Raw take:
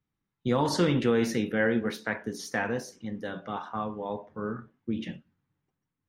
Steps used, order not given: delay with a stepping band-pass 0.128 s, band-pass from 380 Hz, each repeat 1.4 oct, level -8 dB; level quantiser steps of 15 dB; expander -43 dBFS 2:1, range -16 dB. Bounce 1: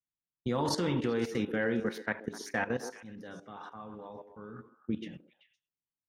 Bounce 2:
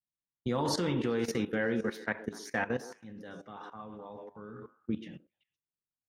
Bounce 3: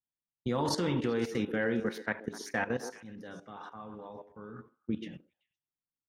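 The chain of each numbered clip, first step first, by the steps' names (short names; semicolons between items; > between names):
level quantiser > expander > delay with a stepping band-pass; delay with a stepping band-pass > level quantiser > expander; level quantiser > delay with a stepping band-pass > expander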